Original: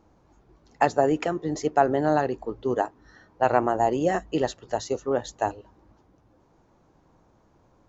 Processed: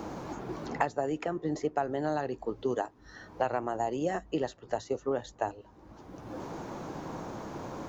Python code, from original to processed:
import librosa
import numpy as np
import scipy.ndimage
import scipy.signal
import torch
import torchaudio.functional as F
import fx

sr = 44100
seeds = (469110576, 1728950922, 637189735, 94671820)

y = fx.band_squash(x, sr, depth_pct=100)
y = y * 10.0 ** (-7.5 / 20.0)